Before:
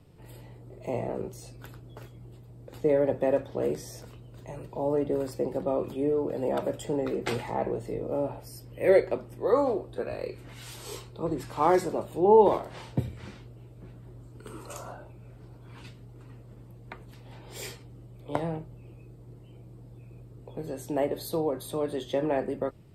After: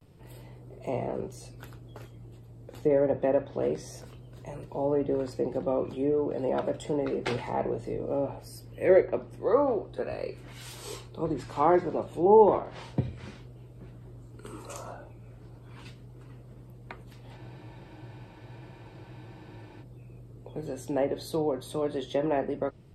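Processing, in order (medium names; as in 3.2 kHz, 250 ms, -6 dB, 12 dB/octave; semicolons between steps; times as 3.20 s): vibrato 0.32 Hz 44 cents; low-pass that closes with the level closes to 2.1 kHz, closed at -20 dBFS; spectral freeze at 17.40 s, 2.41 s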